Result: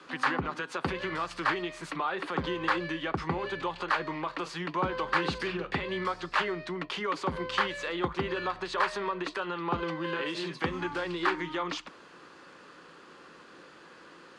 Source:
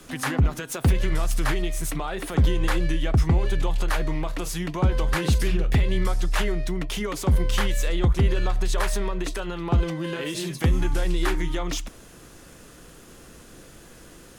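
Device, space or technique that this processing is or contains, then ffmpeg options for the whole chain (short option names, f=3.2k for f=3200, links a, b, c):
car door speaker: -filter_complex "[0:a]highpass=87,equalizer=f=170:t=q:w=4:g=7,equalizer=f=450:t=q:w=4:g=-4,equalizer=f=670:t=q:w=4:g=-9,equalizer=f=1.1k:t=q:w=4:g=3,equalizer=f=2.1k:t=q:w=4:g=-3,equalizer=f=4.5k:t=q:w=4:g=9,lowpass=f=8.7k:w=0.5412,lowpass=f=8.7k:w=1.3066,acrossover=split=350 2900:gain=0.0794 1 0.1[a][b][c];[a][b][c]amix=inputs=3:normalize=0,volume=2.5dB"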